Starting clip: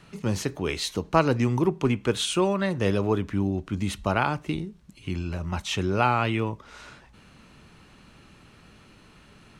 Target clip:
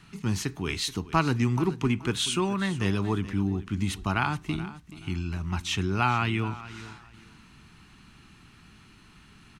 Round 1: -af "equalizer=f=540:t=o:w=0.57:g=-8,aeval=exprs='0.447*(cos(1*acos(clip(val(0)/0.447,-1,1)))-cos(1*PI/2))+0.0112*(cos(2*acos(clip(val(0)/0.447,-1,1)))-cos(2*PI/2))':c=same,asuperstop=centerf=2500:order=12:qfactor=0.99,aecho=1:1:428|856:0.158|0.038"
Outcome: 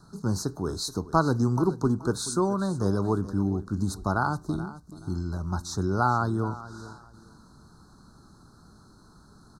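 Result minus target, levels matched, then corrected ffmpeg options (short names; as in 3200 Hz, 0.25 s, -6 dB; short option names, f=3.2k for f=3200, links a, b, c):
2000 Hz band -5.5 dB; 500 Hz band +3.5 dB
-af "equalizer=f=540:t=o:w=0.57:g=-18,aeval=exprs='0.447*(cos(1*acos(clip(val(0)/0.447,-1,1)))-cos(1*PI/2))+0.0112*(cos(2*acos(clip(val(0)/0.447,-1,1)))-cos(2*PI/2))':c=same,aecho=1:1:428|856:0.158|0.038"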